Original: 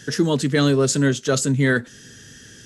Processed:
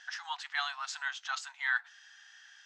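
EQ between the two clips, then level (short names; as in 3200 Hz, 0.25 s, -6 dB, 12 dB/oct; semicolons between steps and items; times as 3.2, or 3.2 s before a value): brick-wall FIR high-pass 700 Hz; air absorption 190 m; -5.5 dB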